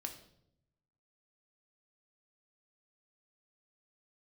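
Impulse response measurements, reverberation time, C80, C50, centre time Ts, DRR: 0.75 s, 13.0 dB, 10.0 dB, 14 ms, 3.5 dB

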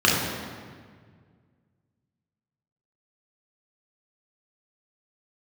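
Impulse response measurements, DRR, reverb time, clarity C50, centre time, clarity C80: −4.5 dB, 1.8 s, 0.5 dB, 87 ms, 3.0 dB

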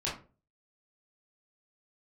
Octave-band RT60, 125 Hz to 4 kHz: 0.50, 0.45, 0.40, 0.30, 0.25, 0.20 seconds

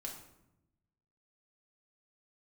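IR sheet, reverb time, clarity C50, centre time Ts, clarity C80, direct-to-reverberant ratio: 0.85 s, 6.0 dB, 29 ms, 9.0 dB, −1.0 dB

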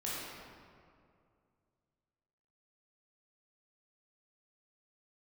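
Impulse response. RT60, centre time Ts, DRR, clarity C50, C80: 2.3 s, 141 ms, −8.0 dB, −3.5 dB, −1.0 dB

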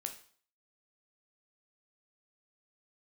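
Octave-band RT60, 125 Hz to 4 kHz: 0.45, 0.50, 0.50, 0.50, 0.45, 0.45 seconds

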